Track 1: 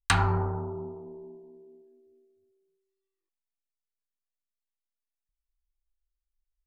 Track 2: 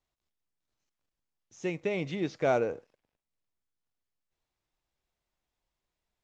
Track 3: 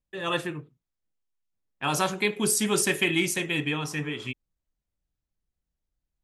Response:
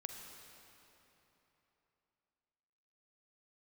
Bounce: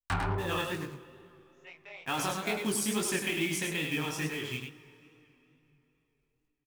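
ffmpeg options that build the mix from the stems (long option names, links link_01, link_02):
-filter_complex "[0:a]equalizer=frequency=5400:width_type=o:width=2.4:gain=-11.5,aeval=exprs='0.251*(cos(1*acos(clip(val(0)/0.251,-1,1)))-cos(1*PI/2))+0.0251*(cos(7*acos(clip(val(0)/0.251,-1,1)))-cos(7*PI/2))':channel_layout=same,volume=-3.5dB,asplit=3[link_01][link_02][link_03];[link_02]volume=-13.5dB[link_04];[link_03]volume=-4.5dB[link_05];[1:a]highpass=frequency=740:width=0.5412,highpass=frequency=740:width=1.3066,afwtdn=0.00251,volume=-7.5dB,asplit=2[link_06][link_07];[link_07]volume=-7dB[link_08];[2:a]acompressor=threshold=-29dB:ratio=3,acrusher=bits=3:mode=log:mix=0:aa=0.000001,adelay=250,volume=-1.5dB,asplit=3[link_09][link_10][link_11];[link_10]volume=-4.5dB[link_12];[link_11]volume=-3.5dB[link_13];[3:a]atrim=start_sample=2205[link_14];[link_04][link_08][link_12]amix=inputs=3:normalize=0[link_15];[link_15][link_14]afir=irnorm=-1:irlink=0[link_16];[link_05][link_13]amix=inputs=2:normalize=0,aecho=0:1:101:1[link_17];[link_01][link_06][link_09][link_16][link_17]amix=inputs=5:normalize=0,flanger=delay=17:depth=8:speed=2.3"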